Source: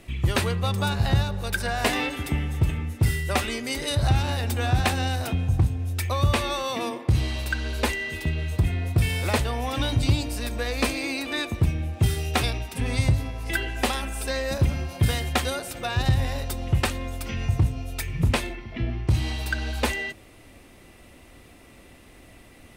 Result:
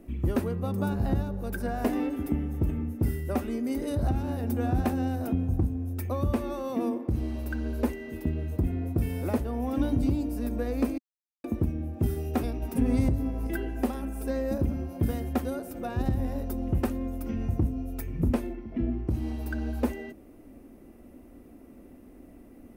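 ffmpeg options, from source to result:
ffmpeg -i in.wav -filter_complex "[0:a]asettb=1/sr,asplit=3[link_01][link_02][link_03];[link_01]atrim=end=12.624[link_04];[link_02]atrim=start=12.62:end=13.47,asetpts=PTS-STARTPTS,afade=type=in:duration=0.004:curve=qsin,afade=type=out:start_time=0.846:duration=0.004:curve=qsin,acontrast=47[link_05];[link_03]atrim=start=13.466[link_06];[link_04][link_05]acrossfade=duration=0.004:curve1=hsin:curve2=qsin[link_07];[link_07][link_06]acrossfade=duration=0.004:curve1=qsin:curve2=hsin,asplit=3[link_08][link_09][link_10];[link_08]atrim=end=10.98,asetpts=PTS-STARTPTS,afade=type=out:start_time=10.976:duration=0.004:curve=hsin[link_11];[link_09]atrim=start=10.98:end=11.44,asetpts=PTS-STARTPTS,volume=0[link_12];[link_10]atrim=start=11.44,asetpts=PTS-STARTPTS,afade=type=in:duration=0.004:curve=hsin[link_13];[link_11][link_12][link_13]concat=n=3:v=0:a=1,equalizer=frequency=125:width_type=o:width=1:gain=-9,equalizer=frequency=250:width_type=o:width=1:gain=10,equalizer=frequency=1000:width_type=o:width=1:gain=-5,equalizer=frequency=2000:width_type=o:width=1:gain=-7,equalizer=frequency=4000:width_type=o:width=1:gain=-8,equalizer=frequency=8000:width_type=o:width=1:gain=-12,alimiter=limit=-13dB:level=0:latency=1:release=444,equalizer=frequency=3300:width=1:gain=-8.5,volume=-1.5dB" out.wav

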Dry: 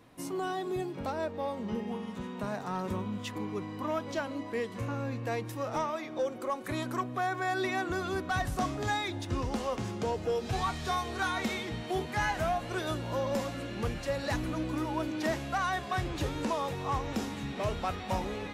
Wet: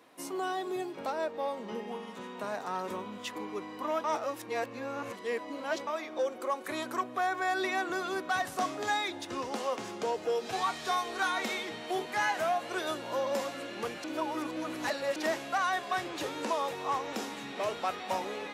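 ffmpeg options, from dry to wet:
ffmpeg -i in.wav -filter_complex "[0:a]asplit=5[link_01][link_02][link_03][link_04][link_05];[link_01]atrim=end=4.042[link_06];[link_02]atrim=start=4.038:end=5.872,asetpts=PTS-STARTPTS,areverse[link_07];[link_03]atrim=start=5.868:end=14.042[link_08];[link_04]atrim=start=14.038:end=15.162,asetpts=PTS-STARTPTS,areverse[link_09];[link_05]atrim=start=15.158[link_10];[link_06][link_07]acrossfade=duration=0.004:curve1=hsin:curve2=hsin[link_11];[link_11][link_08]acrossfade=duration=0.004:curve1=hsin:curve2=hsin[link_12];[link_12][link_09]acrossfade=duration=0.004:curve1=hsin:curve2=hsin[link_13];[link_13][link_10]acrossfade=duration=0.004:curve1=hsin:curve2=hsin,highpass=360,volume=1.5dB" out.wav

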